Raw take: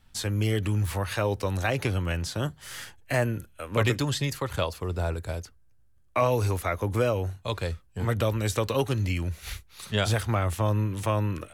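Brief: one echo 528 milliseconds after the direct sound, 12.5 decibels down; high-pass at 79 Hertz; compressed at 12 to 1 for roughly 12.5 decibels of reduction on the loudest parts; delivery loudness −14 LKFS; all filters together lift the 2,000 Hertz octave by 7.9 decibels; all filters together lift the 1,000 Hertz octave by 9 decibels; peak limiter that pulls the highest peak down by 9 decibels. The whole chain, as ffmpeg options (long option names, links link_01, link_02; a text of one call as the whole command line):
ffmpeg -i in.wav -af "highpass=79,equalizer=frequency=1000:width_type=o:gain=9,equalizer=frequency=2000:width_type=o:gain=7,acompressor=threshold=-26dB:ratio=12,alimiter=limit=-22.5dB:level=0:latency=1,aecho=1:1:528:0.237,volume=20dB" out.wav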